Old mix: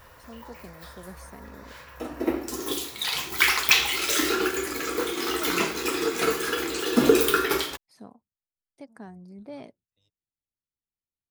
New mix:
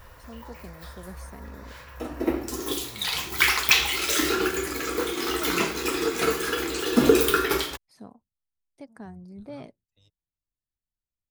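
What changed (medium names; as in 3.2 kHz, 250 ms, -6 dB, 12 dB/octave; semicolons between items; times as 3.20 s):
second voice +8.0 dB; master: add bass shelf 75 Hz +11.5 dB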